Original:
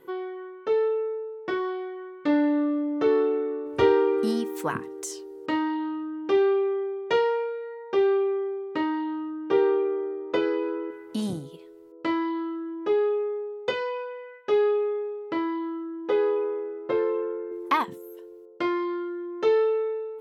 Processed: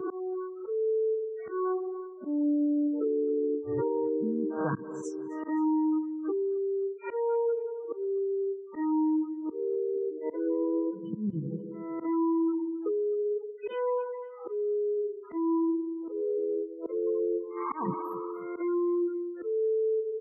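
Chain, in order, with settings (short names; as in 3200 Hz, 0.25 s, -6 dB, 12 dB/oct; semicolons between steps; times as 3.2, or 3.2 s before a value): spectral swells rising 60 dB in 0.61 s; gate -30 dBFS, range -12 dB; tape echo 62 ms, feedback 82%, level -24 dB, low-pass 4500 Hz; reverse; compressor 5:1, threshold -38 dBFS, peak gain reduction 20 dB; reverse; spectral gate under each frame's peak -15 dB strong; bell 120 Hz +11 dB 2.8 oct; comb 6.3 ms, depth 46%; auto swell 0.234 s; feedback echo 0.264 s, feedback 28%, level -23 dB; three-band squash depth 70%; gain +5.5 dB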